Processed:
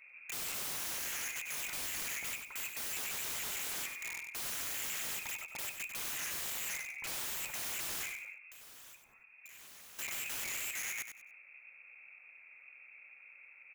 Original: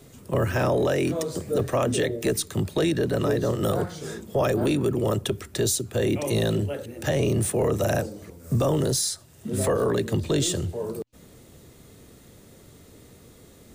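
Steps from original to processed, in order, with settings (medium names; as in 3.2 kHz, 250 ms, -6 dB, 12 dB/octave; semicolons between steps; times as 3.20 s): local Wiener filter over 15 samples; frequency inversion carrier 2.6 kHz; integer overflow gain 28 dB; 8.35–9.99 s: compression 6:1, threshold -48 dBFS, peak gain reduction 15.5 dB; feedback delay 96 ms, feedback 25%, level -8 dB; trim -7 dB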